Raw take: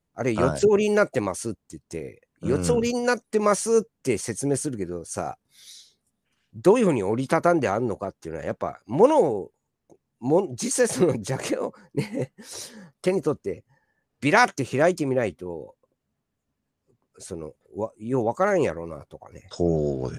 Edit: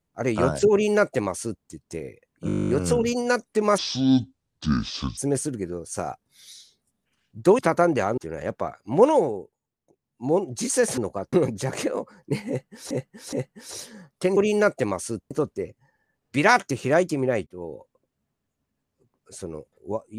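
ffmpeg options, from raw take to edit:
ffmpeg -i in.wav -filter_complex "[0:a]asplit=25[link_01][link_02][link_03][link_04][link_05][link_06][link_07][link_08][link_09][link_10][link_11][link_12][link_13][link_14][link_15][link_16][link_17][link_18][link_19][link_20][link_21][link_22][link_23][link_24][link_25];[link_01]atrim=end=2.492[link_26];[link_02]atrim=start=2.468:end=2.492[link_27];[link_03]atrim=start=2.468:end=2.492[link_28];[link_04]atrim=start=2.468:end=2.492[link_29];[link_05]atrim=start=2.468:end=2.492[link_30];[link_06]atrim=start=2.468:end=2.492[link_31];[link_07]atrim=start=2.468:end=2.492[link_32];[link_08]atrim=start=2.468:end=2.492[link_33];[link_09]atrim=start=2.468:end=2.492[link_34];[link_10]atrim=start=2.468:end=2.492[link_35];[link_11]atrim=start=2.468:end=2.492[link_36];[link_12]atrim=start=2.468:end=3.564[link_37];[link_13]atrim=start=3.56:end=4.37,asetpts=PTS-STARTPTS,asetrate=25578,aresample=44100[link_38];[link_14]atrim=start=4.366:end=6.782[link_39];[link_15]atrim=start=7.248:end=7.842[link_40];[link_16]atrim=start=8.188:end=9.61,asetpts=PTS-STARTPTS,afade=type=out:start_time=0.932:duration=0.49:silence=0.398107[link_41];[link_17]atrim=start=9.61:end=9.99,asetpts=PTS-STARTPTS,volume=-8dB[link_42];[link_18]atrim=start=9.99:end=10.992,asetpts=PTS-STARTPTS,afade=type=in:duration=0.49:silence=0.398107[link_43];[link_19]atrim=start=7.838:end=8.192[link_44];[link_20]atrim=start=10.988:end=12.572[link_45];[link_21]atrim=start=12.148:end=12.572[link_46];[link_22]atrim=start=12.148:end=13.192[link_47];[link_23]atrim=start=0.718:end=1.662[link_48];[link_24]atrim=start=13.188:end=15.35,asetpts=PTS-STARTPTS,afade=type=out:start_time=2.158:duration=0.004:curve=hsin:silence=0.0630957[link_49];[link_25]atrim=start=15.35,asetpts=PTS-STARTPTS,afade=type=in:duration=0.25:curve=qsin:silence=0.0630957[link_50];[link_26][link_27]acrossfade=duration=0.004:curve1=hsin:curve2=hsin[link_51];[link_51][link_28]acrossfade=duration=0.004:curve1=hsin:curve2=hsin[link_52];[link_52][link_29]acrossfade=duration=0.004:curve1=hsin:curve2=hsin[link_53];[link_53][link_30]acrossfade=duration=0.004:curve1=hsin:curve2=hsin[link_54];[link_54][link_31]acrossfade=duration=0.004:curve1=hsin:curve2=hsin[link_55];[link_55][link_32]acrossfade=duration=0.004:curve1=hsin:curve2=hsin[link_56];[link_56][link_33]acrossfade=duration=0.004:curve1=hsin:curve2=hsin[link_57];[link_57][link_34]acrossfade=duration=0.004:curve1=hsin:curve2=hsin[link_58];[link_58][link_35]acrossfade=duration=0.004:curve1=hsin:curve2=hsin[link_59];[link_59][link_36]acrossfade=duration=0.004:curve1=hsin:curve2=hsin[link_60];[link_60][link_37]acrossfade=duration=0.004:curve1=hsin:curve2=hsin[link_61];[link_61][link_38]acrossfade=duration=0.004:curve1=hsin:curve2=hsin[link_62];[link_62][link_39]acrossfade=duration=0.004:curve1=hsin:curve2=hsin[link_63];[link_63][link_40]acrossfade=duration=0.004:curve1=hsin:curve2=hsin[link_64];[link_41][link_42][link_43]concat=n=3:v=0:a=1[link_65];[link_64][link_65]acrossfade=duration=0.004:curve1=hsin:curve2=hsin[link_66];[link_66][link_44]acrossfade=duration=0.004:curve1=hsin:curve2=hsin[link_67];[link_67][link_45]acrossfade=duration=0.004:curve1=hsin:curve2=hsin[link_68];[link_68][link_46]acrossfade=duration=0.004:curve1=hsin:curve2=hsin[link_69];[link_69][link_47]acrossfade=duration=0.004:curve1=hsin:curve2=hsin[link_70];[link_70][link_48]acrossfade=duration=0.004:curve1=hsin:curve2=hsin[link_71];[link_49][link_50]concat=n=2:v=0:a=1[link_72];[link_71][link_72]acrossfade=duration=0.004:curve1=hsin:curve2=hsin" out.wav

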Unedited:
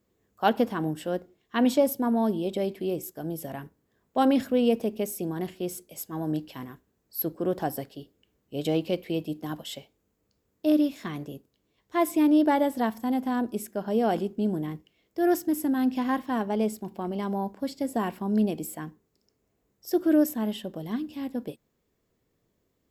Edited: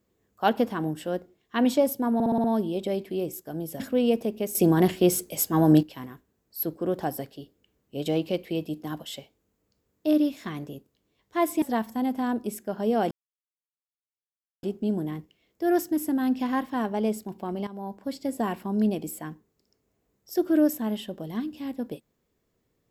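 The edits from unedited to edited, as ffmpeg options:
ffmpeg -i in.wav -filter_complex "[0:a]asplit=12[link_01][link_02][link_03][link_04][link_05][link_06][link_07][link_08][link_09][link_10][link_11][link_12];[link_01]atrim=end=2.202[link_13];[link_02]atrim=start=2.138:end=2.202[link_14];[link_03]atrim=start=2.138:end=2.202[link_15];[link_04]atrim=start=2.138:end=2.202[link_16];[link_05]atrim=start=2.138:end=2.202[link_17];[link_06]atrim=start=2.138:end=3.502[link_18];[link_07]atrim=start=4.388:end=5.142[link_19];[link_08]atrim=start=5.138:end=6.422,asetpts=PTS-STARTPTS,volume=11.5dB[link_20];[link_09]atrim=start=6.418:end=12.212[link_21];[link_10]atrim=start=12.698:end=14.19,asetpts=PTS-STARTPTS,afade=type=out:start_time=1.488:duration=0.004:curve=hsin,apad=pad_dur=1.52[link_22];[link_11]atrim=start=14.19:end=17.23,asetpts=PTS-STARTPTS,afade=type=in:duration=0.004:curve=hsin,afade=type=out:start_time=3.036:duration=0.004:curve=hsin:silence=0.177828[link_23];[link_12]atrim=start=17.23,asetpts=PTS-STARTPTS,afade=type=in:duration=0.66:curve=qsin:silence=0.177828[link_24];[link_13][link_14]acrossfade=duration=0.004:curve1=hsin:curve2=hsin[link_25];[link_25][link_15]acrossfade=duration=0.004:curve1=hsin:curve2=hsin[link_26];[link_26][link_16]acrossfade=duration=0.004:curve1=hsin:curve2=hsin[link_27];[link_27][link_17]acrossfade=duration=0.004:curve1=hsin:curve2=hsin[link_28];[link_28][link_18]acrossfade=duration=0.004:curve1=hsin:curve2=hsin[link_29];[link_29][link_19]acrossfade=duration=0.004:curve1=hsin:curve2=hsin[link_30];[link_30][link_20]acrossfade=duration=0.004:curve1=hsin:curve2=hsin[link_31];[link_31][link_21]acrossfade=duration=0.004:curve1=hsin:curve2=hsin[link_32];[link_22][link_23][link_24]concat=n=3:v=0:a=1[link_33];[link_32][link_33]acrossfade=duration=0.004:curve1=hsin:curve2=hsin" out.wav

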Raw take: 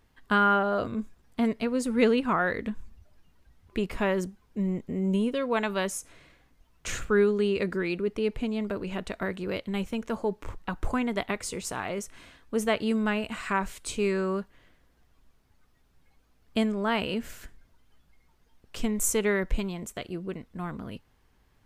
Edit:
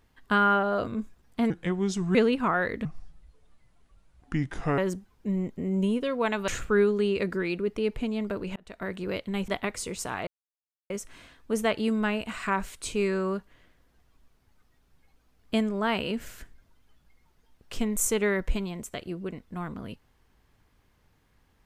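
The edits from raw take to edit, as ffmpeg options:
ffmpeg -i in.wav -filter_complex "[0:a]asplit=9[link_01][link_02][link_03][link_04][link_05][link_06][link_07][link_08][link_09];[link_01]atrim=end=1.504[link_10];[link_02]atrim=start=1.5:end=2,asetpts=PTS-STARTPTS,asetrate=33957,aresample=44100,atrim=end_sample=28636,asetpts=PTS-STARTPTS[link_11];[link_03]atrim=start=1.996:end=2.704[link_12];[link_04]atrim=start=2.7:end=4.09,asetpts=PTS-STARTPTS,asetrate=31752,aresample=44100[link_13];[link_05]atrim=start=4.086:end=5.792[link_14];[link_06]atrim=start=6.878:end=8.96,asetpts=PTS-STARTPTS,afade=type=out:start_time=2.078:duration=0.004:curve=hsin[link_15];[link_07]atrim=start=8.96:end=9.882,asetpts=PTS-STARTPTS,afade=type=in:duration=0.42[link_16];[link_08]atrim=start=11.138:end=11.93,asetpts=PTS-STARTPTS,afade=type=out:start_time=0.788:duration=0.004:curve=hsin,apad=pad_dur=0.63[link_17];[link_09]atrim=start=11.93,asetpts=PTS-STARTPTS,afade=type=in:duration=0.004:curve=hsin[link_18];[link_10][link_11]acrossfade=duration=0.004:curve1=hsin:curve2=hsin[link_19];[link_19][link_12]acrossfade=duration=0.004:curve1=hsin:curve2=hsin[link_20];[link_20][link_13]acrossfade=duration=0.004:curve1=hsin:curve2=hsin[link_21];[link_21][link_14]acrossfade=duration=0.004:curve1=hsin:curve2=hsin[link_22];[link_15][link_16]concat=n=2:v=0:a=1[link_23];[link_22][link_23]acrossfade=duration=0.004:curve1=hsin:curve2=hsin[link_24];[link_17][link_18]concat=n=2:v=0:a=1[link_25];[link_24][link_25]acrossfade=duration=0.004:curve1=hsin:curve2=hsin" out.wav

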